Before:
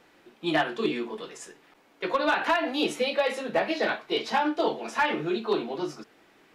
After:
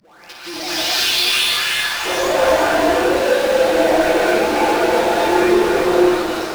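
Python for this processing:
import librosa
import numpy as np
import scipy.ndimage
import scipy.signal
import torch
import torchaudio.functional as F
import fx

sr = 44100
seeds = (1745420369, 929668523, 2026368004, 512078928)

y = fx.spec_delay(x, sr, highs='late', ms=739)
y = fx.highpass(y, sr, hz=250.0, slope=6)
y = fx.low_shelf(y, sr, hz=440.0, db=-9.0)
y = fx.notch(y, sr, hz=1900.0, q=12.0)
y = fx.leveller(y, sr, passes=5)
y = fx.filter_sweep_bandpass(y, sr, from_hz=5100.0, to_hz=430.0, start_s=0.94, end_s=2.45, q=2.3)
y = fx.power_curve(y, sr, exponent=0.35)
y = fx.echo_split(y, sr, split_hz=720.0, low_ms=89, high_ms=342, feedback_pct=52, wet_db=-6)
y = fx.rev_gated(y, sr, seeds[0], gate_ms=290, shape='rising', drr_db=-6.0)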